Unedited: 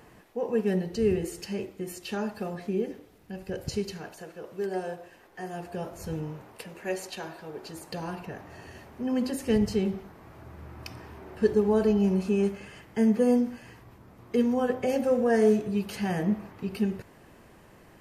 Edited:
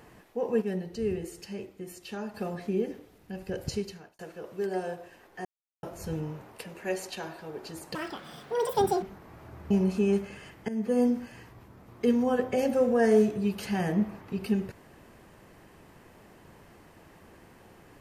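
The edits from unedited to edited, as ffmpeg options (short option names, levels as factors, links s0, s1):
-filter_complex "[0:a]asplit=10[s0][s1][s2][s3][s4][s5][s6][s7][s8][s9];[s0]atrim=end=0.622[s10];[s1]atrim=start=0.618:end=2.342,asetpts=PTS-STARTPTS,volume=0.531[s11];[s2]atrim=start=2.338:end=4.19,asetpts=PTS-STARTPTS,afade=t=out:st=1.352:d=0.5[s12];[s3]atrim=start=4.19:end=5.45,asetpts=PTS-STARTPTS,afade=t=in:d=0.004:c=hsin,afade=t=out:st=1.256:d=0.004:c=hsin[s13];[s4]atrim=start=5.45:end=5.83,asetpts=PTS-STARTPTS,volume=0[s14];[s5]atrim=start=5.83:end=7.954,asetpts=PTS-STARTPTS,afade=t=in:d=0.004:c=hsin[s15];[s6]atrim=start=7.95:end=9.96,asetpts=PTS-STARTPTS,asetrate=82467,aresample=44100[s16];[s7]atrim=start=9.956:end=10.642[s17];[s8]atrim=start=12.008:end=12.99,asetpts=PTS-STARTPTS,afade=t=out:st=0.978:d=0.004:c=hsin:silence=0.141254[s18];[s9]atrim=start=12.99,asetpts=PTS-STARTPTS,afade=t=in:d=0.57:c=qsin:silence=0.141254[s19];[s10][s11]acrossfade=d=0.004:c1=hsin:c2=hsin[s20];[s12][s13][s14][s15]concat=n=4:v=0:a=1[s21];[s20][s21]acrossfade=d=0.004:c1=hsin:c2=hsin[s22];[s22][s16]acrossfade=d=0.004:c1=hsin:c2=hsin[s23];[s23][s17]acrossfade=d=0.004:c1=hsin:c2=hsin[s24];[s18][s19]concat=n=2:v=0:a=1[s25];[s24][s25]acrossfade=d=0.004:c1=hsin:c2=hsin"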